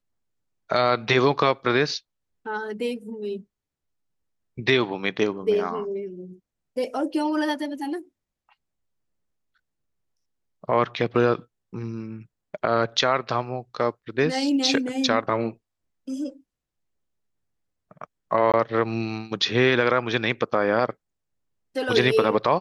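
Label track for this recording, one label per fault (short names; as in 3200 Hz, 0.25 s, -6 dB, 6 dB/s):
18.520000	18.540000	gap 17 ms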